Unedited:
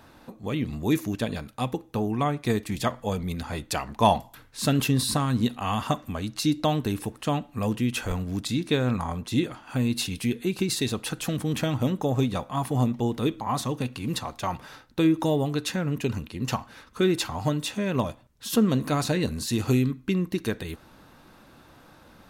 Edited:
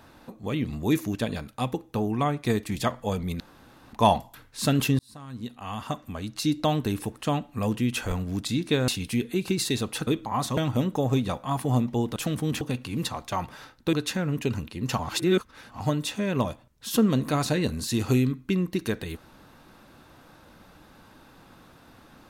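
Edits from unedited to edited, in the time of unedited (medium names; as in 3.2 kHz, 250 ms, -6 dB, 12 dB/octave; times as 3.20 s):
3.40–3.93 s: room tone
4.99–6.72 s: fade in
8.88–9.99 s: delete
11.18–11.63 s: swap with 13.22–13.72 s
15.04–15.52 s: delete
16.58–17.39 s: reverse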